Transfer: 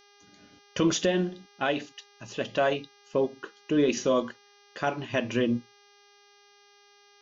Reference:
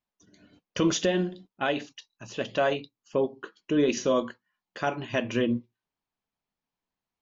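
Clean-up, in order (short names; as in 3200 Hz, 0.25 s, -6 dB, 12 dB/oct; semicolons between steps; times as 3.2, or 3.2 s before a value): de-hum 406.5 Hz, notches 15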